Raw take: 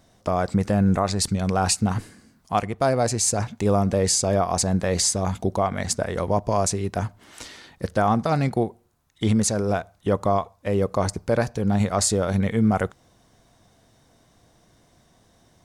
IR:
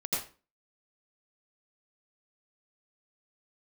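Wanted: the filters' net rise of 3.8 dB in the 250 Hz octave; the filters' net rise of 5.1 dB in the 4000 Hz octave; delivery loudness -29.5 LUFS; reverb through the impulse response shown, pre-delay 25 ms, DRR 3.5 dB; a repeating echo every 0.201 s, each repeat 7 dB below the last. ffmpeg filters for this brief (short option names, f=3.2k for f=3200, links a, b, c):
-filter_complex "[0:a]equalizer=f=250:t=o:g=5,equalizer=f=4k:t=o:g=6.5,aecho=1:1:201|402|603|804|1005:0.447|0.201|0.0905|0.0407|0.0183,asplit=2[a][b];[1:a]atrim=start_sample=2205,adelay=25[c];[b][c]afir=irnorm=-1:irlink=0,volume=-9dB[d];[a][d]amix=inputs=2:normalize=0,volume=-11.5dB"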